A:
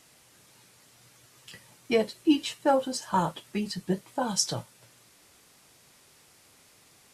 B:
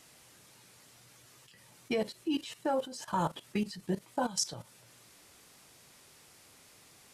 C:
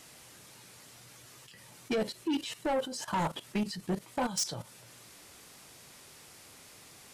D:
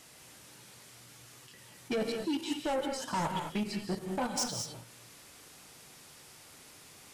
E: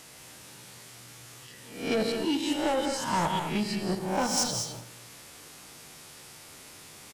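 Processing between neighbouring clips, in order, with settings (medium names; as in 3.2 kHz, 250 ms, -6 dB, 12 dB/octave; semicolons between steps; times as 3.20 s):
level held to a coarse grid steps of 15 dB; trim +1 dB
saturation -30.5 dBFS, distortion -11 dB; trim +5 dB
gated-style reverb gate 240 ms rising, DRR 3.5 dB; trim -2 dB
reverse spectral sustain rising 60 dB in 0.55 s; feedback delay 83 ms, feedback 47%, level -14 dB; trim +3.5 dB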